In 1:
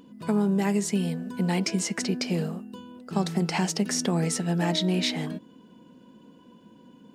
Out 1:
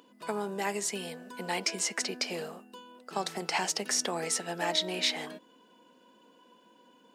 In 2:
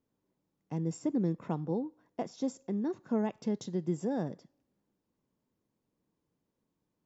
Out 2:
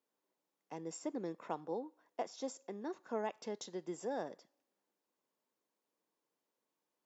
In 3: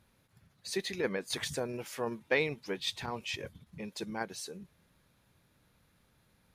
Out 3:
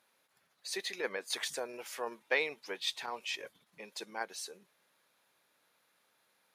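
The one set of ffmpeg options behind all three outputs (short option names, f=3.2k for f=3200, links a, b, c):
-af "highpass=530"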